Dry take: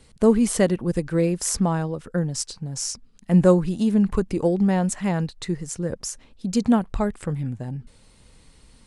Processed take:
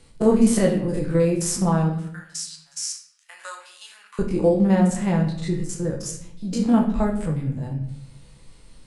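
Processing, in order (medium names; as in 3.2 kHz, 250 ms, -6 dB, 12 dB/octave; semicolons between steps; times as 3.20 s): spectrogram pixelated in time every 50 ms; 1.89–4.19 s: high-pass 1.3 kHz 24 dB/octave; simulated room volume 120 m³, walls mixed, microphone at 0.72 m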